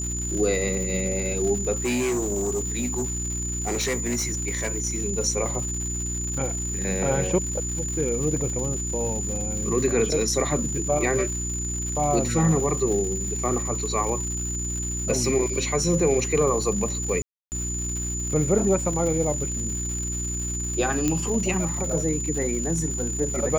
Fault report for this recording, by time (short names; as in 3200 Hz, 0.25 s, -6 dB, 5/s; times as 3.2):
crackle 310/s -32 dBFS
hum 60 Hz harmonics 6 -31 dBFS
tone 7000 Hz -29 dBFS
1.75–4.78 clipped -21.5 dBFS
17.22–17.52 gap 0.299 s
21.08 pop -10 dBFS